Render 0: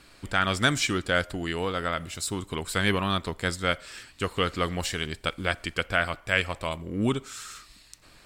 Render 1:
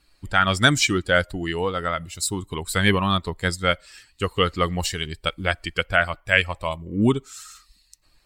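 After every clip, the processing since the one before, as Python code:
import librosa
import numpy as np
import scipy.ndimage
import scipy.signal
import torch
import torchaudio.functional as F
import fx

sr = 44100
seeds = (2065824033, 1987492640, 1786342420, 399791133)

y = fx.bin_expand(x, sr, power=1.5)
y = y * librosa.db_to_amplitude(8.0)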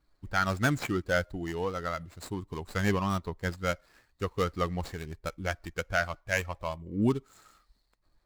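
y = scipy.ndimage.median_filter(x, 15, mode='constant')
y = y * librosa.db_to_amplitude(-7.0)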